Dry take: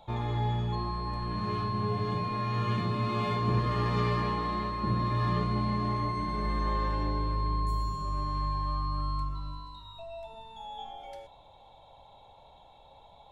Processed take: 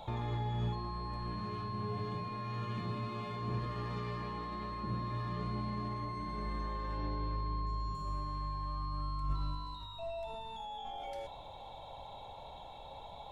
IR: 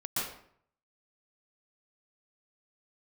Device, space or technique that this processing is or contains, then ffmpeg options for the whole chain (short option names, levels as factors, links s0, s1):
de-esser from a sidechain: -filter_complex "[0:a]asettb=1/sr,asplit=3[s0][s1][s2];[s0]atrim=end=6.974[s3];[s1]atrim=start=6.97:end=7.95,asetpts=PTS-STARTPTS,afade=t=in:d=0.004:c=qsin,afade=t=out:st=0.976:d=0.004:c=qsin,lowpass=f=5700:w=0.5412,lowpass=f=5700:w=1.3066[s4];[s2]atrim=start=7.946[s5];[s3][s4]acrossfade=d=0.004:c1=hsin:c2=qsin[s6];[s6][s5]acrossfade=d=0.004:c1=qsin:c2=hsin,asplit=2[s7][s8];[s8]highpass=f=4400:p=1,apad=whole_len=587157[s9];[s7][s9]sidechaincompress=threshold=0.00112:ratio=10:attack=2.2:release=26,volume=2.11"